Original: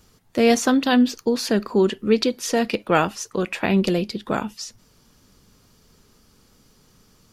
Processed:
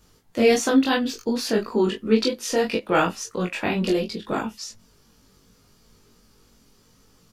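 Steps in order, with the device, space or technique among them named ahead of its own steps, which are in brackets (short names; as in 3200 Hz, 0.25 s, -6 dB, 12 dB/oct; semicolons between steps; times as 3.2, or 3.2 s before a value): double-tracked vocal (doubler 22 ms -3 dB; chorus 2.9 Hz, delay 17.5 ms, depth 2.3 ms)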